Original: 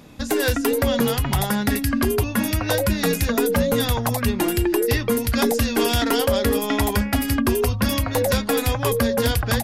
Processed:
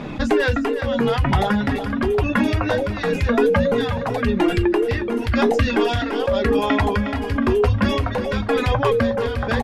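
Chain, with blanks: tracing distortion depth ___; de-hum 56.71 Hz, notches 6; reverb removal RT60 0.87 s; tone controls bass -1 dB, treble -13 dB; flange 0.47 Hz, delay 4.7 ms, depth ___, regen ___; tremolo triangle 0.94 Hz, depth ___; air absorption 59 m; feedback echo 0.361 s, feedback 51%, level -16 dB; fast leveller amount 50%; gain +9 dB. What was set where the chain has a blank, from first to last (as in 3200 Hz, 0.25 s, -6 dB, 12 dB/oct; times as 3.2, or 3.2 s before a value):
0.033 ms, 8.9 ms, -57%, 90%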